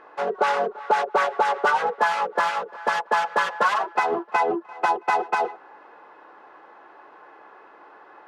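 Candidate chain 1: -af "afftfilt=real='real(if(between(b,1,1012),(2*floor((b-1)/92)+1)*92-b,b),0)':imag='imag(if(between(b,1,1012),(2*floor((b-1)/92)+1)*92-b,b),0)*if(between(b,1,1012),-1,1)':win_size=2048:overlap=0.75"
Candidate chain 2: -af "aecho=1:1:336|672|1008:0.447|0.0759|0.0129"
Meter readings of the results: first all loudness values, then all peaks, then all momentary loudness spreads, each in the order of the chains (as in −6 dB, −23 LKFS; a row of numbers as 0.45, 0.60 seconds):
−23.0, −22.5 LKFS; −8.5, −8.0 dBFS; 4, 5 LU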